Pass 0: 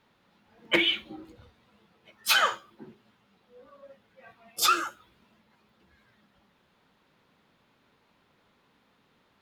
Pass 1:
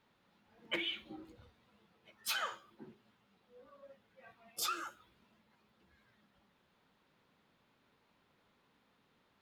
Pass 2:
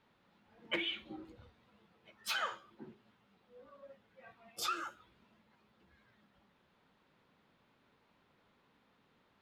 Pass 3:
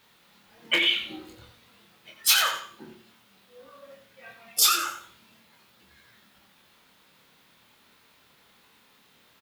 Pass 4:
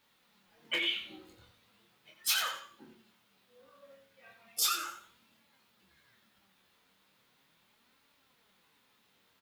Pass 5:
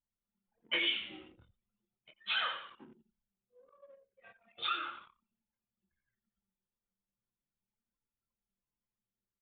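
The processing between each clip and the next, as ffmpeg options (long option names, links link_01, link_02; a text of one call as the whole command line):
ffmpeg -i in.wav -af "acompressor=threshold=-30dB:ratio=3,volume=-6.5dB" out.wav
ffmpeg -i in.wav -af "highshelf=frequency=6800:gain=-10.5,volume=2dB" out.wav
ffmpeg -i in.wav -filter_complex "[0:a]asplit=2[link_01][link_02];[link_02]adelay=26,volume=-4.5dB[link_03];[link_01][link_03]amix=inputs=2:normalize=0,aecho=1:1:88|176|264:0.355|0.0958|0.0259,crystalizer=i=7:c=0,volume=4dB" out.wav
ffmpeg -i in.wav -af "flanger=delay=3.5:depth=7.5:regen=62:speed=0.37:shape=sinusoidal,volume=-5.5dB" out.wav
ffmpeg -i in.wav -filter_complex "[0:a]asplit=5[link_01][link_02][link_03][link_04][link_05];[link_02]adelay=97,afreqshift=-67,volume=-17.5dB[link_06];[link_03]adelay=194,afreqshift=-134,volume=-23.3dB[link_07];[link_04]adelay=291,afreqshift=-201,volume=-29.2dB[link_08];[link_05]adelay=388,afreqshift=-268,volume=-35dB[link_09];[link_01][link_06][link_07][link_08][link_09]amix=inputs=5:normalize=0,aresample=8000,aresample=44100,anlmdn=0.000251" out.wav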